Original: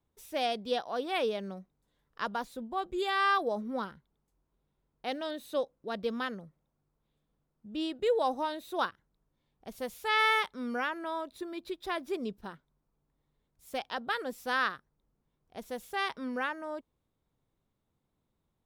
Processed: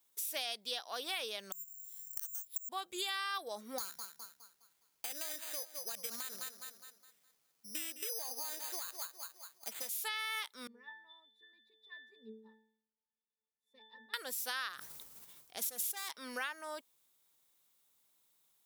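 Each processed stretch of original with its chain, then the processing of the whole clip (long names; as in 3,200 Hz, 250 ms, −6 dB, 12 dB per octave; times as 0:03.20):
0:01.52–0:02.69: parametric band 580 Hz −13 dB 1.2 octaves + bad sample-rate conversion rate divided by 6×, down filtered, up zero stuff + gate with flip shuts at −22 dBFS, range −26 dB
0:03.78–0:09.89: bucket-brigade delay 206 ms, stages 4,096, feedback 36%, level −13 dB + bad sample-rate conversion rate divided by 8×, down none, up hold
0:10.67–0:14.14: Butterworth high-pass 170 Hz + low-shelf EQ 380 Hz +8 dB + resonances in every octave A, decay 0.62 s
0:14.73–0:16.12: low-shelf EQ 170 Hz +6.5 dB + hard clipping −34 dBFS + level that may fall only so fast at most 27 dB per second
whole clip: first difference; brickwall limiter −31.5 dBFS; downward compressor 3 to 1, threshold −56 dBFS; level +17.5 dB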